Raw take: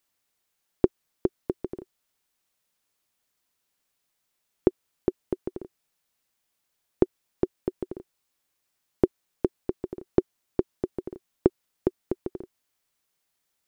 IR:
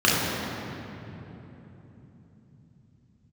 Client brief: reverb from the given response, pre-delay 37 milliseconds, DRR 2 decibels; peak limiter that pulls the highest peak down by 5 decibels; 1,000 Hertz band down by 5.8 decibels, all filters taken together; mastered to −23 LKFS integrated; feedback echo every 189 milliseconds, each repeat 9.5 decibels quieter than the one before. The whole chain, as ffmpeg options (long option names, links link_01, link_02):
-filter_complex "[0:a]equalizer=frequency=1000:width_type=o:gain=-8.5,alimiter=limit=-10dB:level=0:latency=1,aecho=1:1:189|378|567|756:0.335|0.111|0.0365|0.012,asplit=2[link_01][link_02];[1:a]atrim=start_sample=2205,adelay=37[link_03];[link_02][link_03]afir=irnorm=-1:irlink=0,volume=-22.5dB[link_04];[link_01][link_04]amix=inputs=2:normalize=0,volume=8.5dB"